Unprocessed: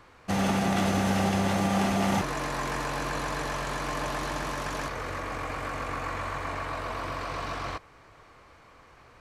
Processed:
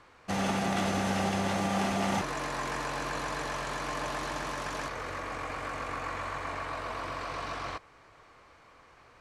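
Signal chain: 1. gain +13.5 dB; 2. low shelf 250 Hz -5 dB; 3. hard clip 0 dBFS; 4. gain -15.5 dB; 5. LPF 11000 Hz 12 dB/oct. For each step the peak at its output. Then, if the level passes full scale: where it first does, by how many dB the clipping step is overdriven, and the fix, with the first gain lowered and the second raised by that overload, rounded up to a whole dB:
-1.0, -2.0, -2.0, -17.5, -17.5 dBFS; no overload

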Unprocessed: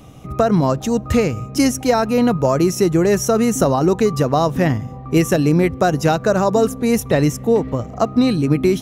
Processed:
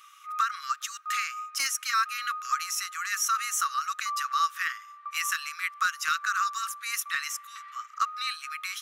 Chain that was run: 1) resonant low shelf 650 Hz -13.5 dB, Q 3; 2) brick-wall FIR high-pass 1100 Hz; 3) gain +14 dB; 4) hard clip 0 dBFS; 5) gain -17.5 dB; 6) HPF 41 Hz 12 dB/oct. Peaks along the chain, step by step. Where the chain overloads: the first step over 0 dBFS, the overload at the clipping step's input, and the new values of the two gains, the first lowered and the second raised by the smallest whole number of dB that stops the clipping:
-3.5, -8.5, +5.5, 0.0, -17.5, -17.0 dBFS; step 3, 5.5 dB; step 3 +8 dB, step 5 -11.5 dB

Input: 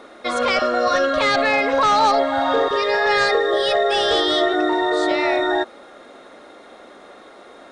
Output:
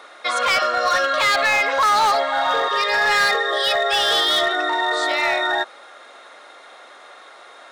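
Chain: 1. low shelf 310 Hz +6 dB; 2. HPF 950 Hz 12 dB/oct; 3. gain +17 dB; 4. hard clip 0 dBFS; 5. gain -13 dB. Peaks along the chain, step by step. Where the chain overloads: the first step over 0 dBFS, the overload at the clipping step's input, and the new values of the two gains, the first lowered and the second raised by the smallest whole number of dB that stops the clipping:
-6.5, -9.5, +7.5, 0.0, -13.0 dBFS; step 3, 7.5 dB; step 3 +9 dB, step 5 -5 dB

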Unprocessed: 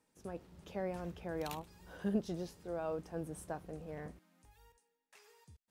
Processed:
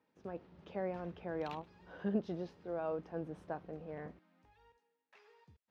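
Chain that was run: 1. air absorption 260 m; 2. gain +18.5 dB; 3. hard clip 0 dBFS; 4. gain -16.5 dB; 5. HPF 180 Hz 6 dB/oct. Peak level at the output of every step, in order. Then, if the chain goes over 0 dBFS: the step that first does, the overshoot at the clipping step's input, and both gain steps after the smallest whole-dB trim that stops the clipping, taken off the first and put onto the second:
-23.5, -5.0, -5.0, -21.5, -23.0 dBFS; no overload

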